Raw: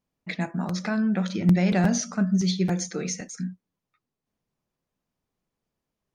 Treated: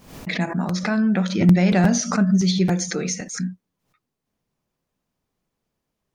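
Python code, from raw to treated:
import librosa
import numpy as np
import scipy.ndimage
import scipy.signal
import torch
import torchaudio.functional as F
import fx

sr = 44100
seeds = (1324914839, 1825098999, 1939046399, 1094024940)

y = fx.pre_swell(x, sr, db_per_s=94.0)
y = y * 10.0 ** (4.5 / 20.0)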